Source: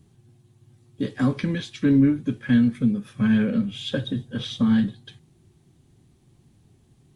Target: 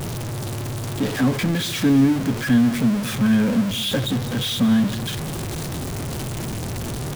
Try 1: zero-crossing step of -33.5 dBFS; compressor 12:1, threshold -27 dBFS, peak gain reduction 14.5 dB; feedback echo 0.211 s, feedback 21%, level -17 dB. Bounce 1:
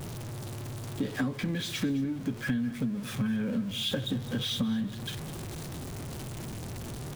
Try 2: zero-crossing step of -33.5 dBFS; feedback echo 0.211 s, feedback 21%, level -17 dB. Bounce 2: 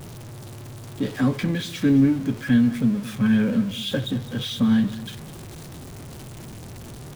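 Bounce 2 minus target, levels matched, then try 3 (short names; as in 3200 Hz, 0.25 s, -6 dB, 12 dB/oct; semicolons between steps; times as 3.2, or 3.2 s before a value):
zero-crossing step: distortion -10 dB
zero-crossing step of -22 dBFS; feedback echo 0.211 s, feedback 21%, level -17 dB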